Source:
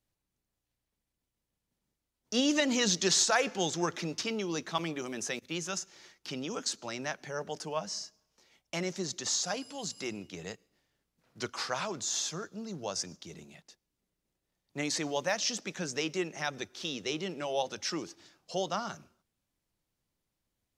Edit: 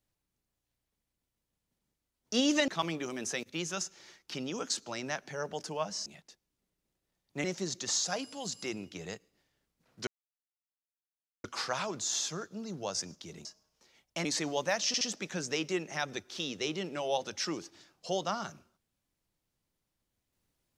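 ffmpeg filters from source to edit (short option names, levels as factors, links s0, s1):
-filter_complex "[0:a]asplit=9[s0][s1][s2][s3][s4][s5][s6][s7][s8];[s0]atrim=end=2.682[s9];[s1]atrim=start=4.638:end=8.022[s10];[s2]atrim=start=13.458:end=14.842[s11];[s3]atrim=start=8.818:end=11.45,asetpts=PTS-STARTPTS,afade=t=out:st=2.628:d=0.004:c=hsin,apad=pad_dur=1.37[s12];[s4]atrim=start=11.45:end=13.462,asetpts=PTS-STARTPTS,afade=t=in:d=0.004:c=hsin[s13];[s5]atrim=start=8.018:end=8.822[s14];[s6]atrim=start=14.838:end=15.532[s15];[s7]atrim=start=15.458:end=15.532[s16];[s8]atrim=start=15.458[s17];[s9][s10]acrossfade=d=0.004:c1=hsin:c2=hsin[s18];[s18][s11]acrossfade=d=0.004:c1=hsin:c2=hsin[s19];[s12][s13]concat=n=2:v=0:a=1[s20];[s19][s20]acrossfade=d=0.004:c1=hsin:c2=hsin[s21];[s21][s14]acrossfade=d=0.004:c1=hsin:c2=hsin[s22];[s22][s15]acrossfade=d=0.004:c1=hsin:c2=hsin[s23];[s23][s16]acrossfade=d=0.004:c1=hsin:c2=hsin[s24];[s24][s17]acrossfade=d=0.004:c1=hsin:c2=hsin"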